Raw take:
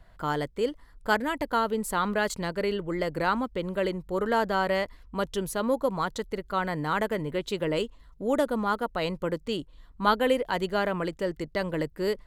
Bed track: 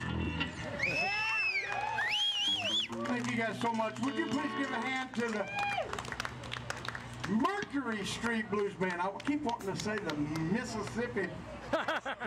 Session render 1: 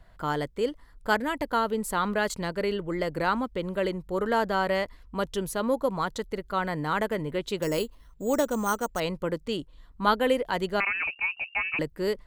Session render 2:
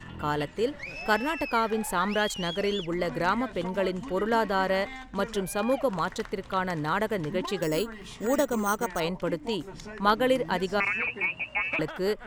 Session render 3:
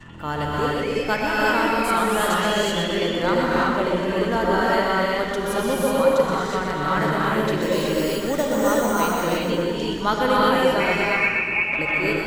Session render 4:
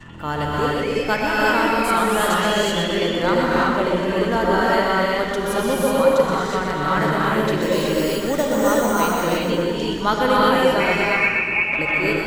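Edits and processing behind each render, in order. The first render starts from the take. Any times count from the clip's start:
7.62–9 careless resampling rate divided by 6×, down none, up hold; 10.8–11.79 inverted band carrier 2800 Hz
add bed track -6.5 dB
on a send: split-band echo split 390 Hz, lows 0.247 s, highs 0.124 s, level -6.5 dB; on the sum: non-linear reverb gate 0.4 s rising, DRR -5 dB
gain +2 dB

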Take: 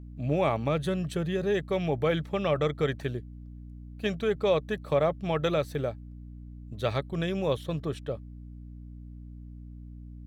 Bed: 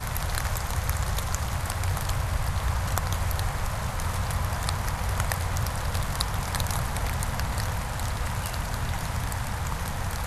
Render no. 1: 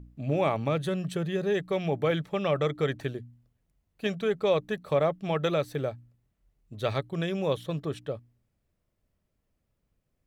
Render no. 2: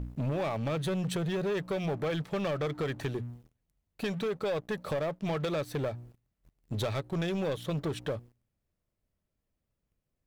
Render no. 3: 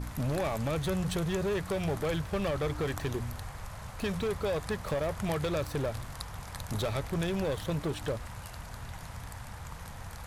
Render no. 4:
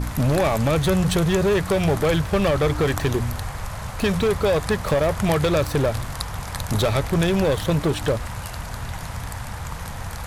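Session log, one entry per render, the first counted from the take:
de-hum 60 Hz, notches 5
compressor 6:1, threshold -37 dBFS, peak gain reduction 16 dB; sample leveller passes 3
add bed -13 dB
gain +11.5 dB

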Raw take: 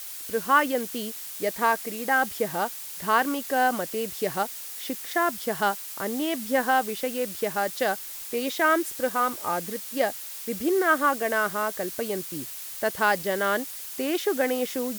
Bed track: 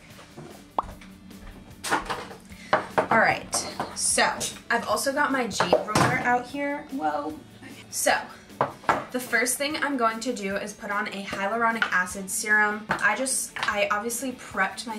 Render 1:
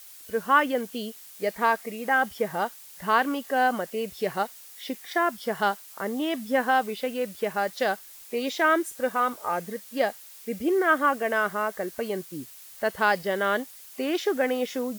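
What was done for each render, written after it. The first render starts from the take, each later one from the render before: noise print and reduce 9 dB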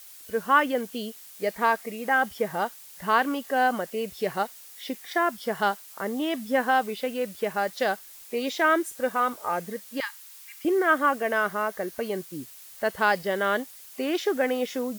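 10–10.65 brick-wall FIR high-pass 850 Hz; 11.21–12.12 notch 7700 Hz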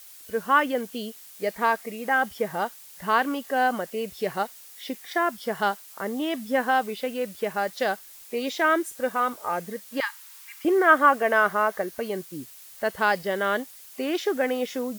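9.92–11.82 bell 1000 Hz +5.5 dB 2.4 oct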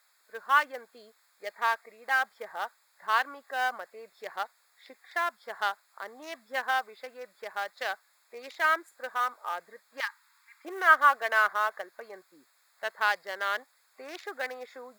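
Wiener smoothing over 15 samples; HPF 1100 Hz 12 dB/oct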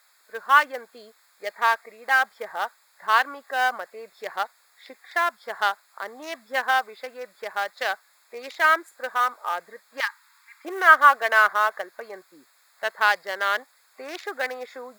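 gain +6.5 dB; limiter -1 dBFS, peak gain reduction 1 dB

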